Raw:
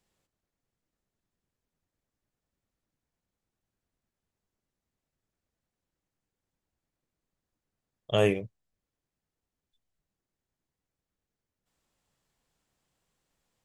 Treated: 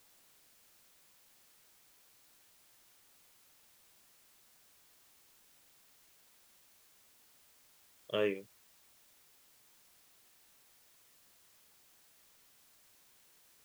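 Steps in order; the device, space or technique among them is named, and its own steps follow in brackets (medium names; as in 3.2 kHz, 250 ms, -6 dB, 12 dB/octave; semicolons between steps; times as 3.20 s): shortwave radio (band-pass 280–2800 Hz; tremolo 0.52 Hz, depth 72%; LFO notch saw down 0.33 Hz 480–2200 Hz; white noise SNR 16 dB)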